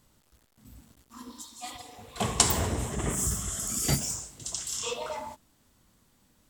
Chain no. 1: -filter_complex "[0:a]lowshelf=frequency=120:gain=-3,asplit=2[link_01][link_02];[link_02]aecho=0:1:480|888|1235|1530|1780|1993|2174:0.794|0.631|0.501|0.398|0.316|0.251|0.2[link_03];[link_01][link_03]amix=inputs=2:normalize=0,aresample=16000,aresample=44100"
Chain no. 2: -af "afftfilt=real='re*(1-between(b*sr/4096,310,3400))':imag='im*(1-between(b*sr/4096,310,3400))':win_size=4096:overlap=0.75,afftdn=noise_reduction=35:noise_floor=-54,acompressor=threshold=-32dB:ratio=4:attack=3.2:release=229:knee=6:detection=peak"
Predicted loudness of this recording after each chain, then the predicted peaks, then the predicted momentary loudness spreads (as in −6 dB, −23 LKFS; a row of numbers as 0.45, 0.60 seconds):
−28.0, −37.0 LKFS; −5.0, −15.0 dBFS; 16, 19 LU